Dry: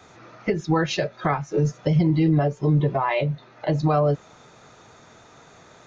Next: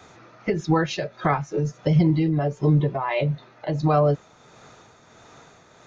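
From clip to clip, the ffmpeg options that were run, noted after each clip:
ffmpeg -i in.wav -af "tremolo=f=1.5:d=0.46,volume=1.5dB" out.wav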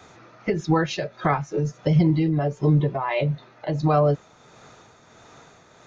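ffmpeg -i in.wav -af anull out.wav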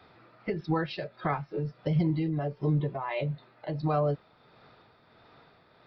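ffmpeg -i in.wav -af "aresample=11025,aresample=44100,volume=-8dB" out.wav

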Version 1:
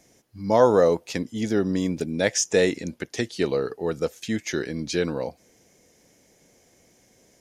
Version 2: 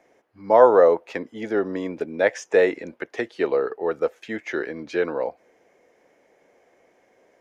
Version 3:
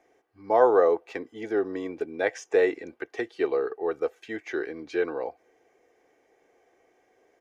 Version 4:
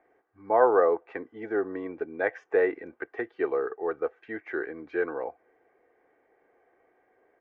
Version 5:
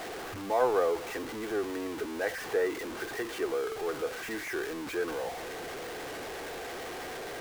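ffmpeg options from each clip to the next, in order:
ffmpeg -i in.wav -filter_complex "[0:a]acrossover=split=360 2300:gain=0.1 1 0.0708[link_01][link_02][link_03];[link_01][link_02][link_03]amix=inputs=3:normalize=0,volume=5.5dB" out.wav
ffmpeg -i in.wav -af "aecho=1:1:2.6:0.49,volume=-5.5dB" out.wav
ffmpeg -i in.wav -af "lowpass=frequency=1600:width_type=q:width=1.6,volume=-2.5dB" out.wav
ffmpeg -i in.wav -af "aeval=exprs='val(0)+0.5*0.0473*sgn(val(0))':channel_layout=same,volume=-7dB" out.wav

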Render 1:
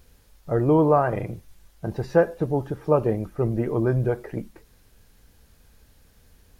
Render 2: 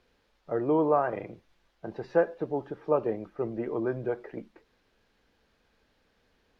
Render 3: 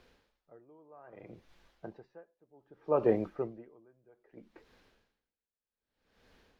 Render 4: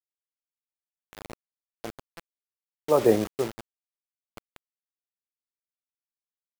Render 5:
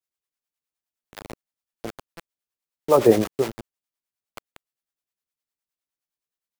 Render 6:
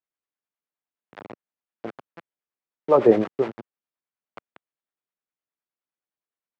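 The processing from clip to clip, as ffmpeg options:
ffmpeg -i in.wav -filter_complex "[0:a]acrossover=split=220 4700:gain=0.178 1 0.0708[link_01][link_02][link_03];[link_01][link_02][link_03]amix=inputs=3:normalize=0,volume=-5dB" out.wav
ffmpeg -i in.wav -af "aeval=exprs='val(0)*pow(10,-40*(0.5-0.5*cos(2*PI*0.63*n/s))/20)':channel_layout=same,volume=5dB" out.wav
ffmpeg -i in.wav -af "acrusher=bits=6:mix=0:aa=0.000001,volume=7dB" out.wav
ffmpeg -i in.wav -filter_complex "[0:a]acrossover=split=510[link_01][link_02];[link_01]aeval=exprs='val(0)*(1-0.7/2+0.7/2*cos(2*PI*9.7*n/s))':channel_layout=same[link_03];[link_02]aeval=exprs='val(0)*(1-0.7/2-0.7/2*cos(2*PI*9.7*n/s))':channel_layout=same[link_04];[link_03][link_04]amix=inputs=2:normalize=0,volume=7.5dB" out.wav
ffmpeg -i in.wav -af "highpass=150,lowpass=2100" out.wav

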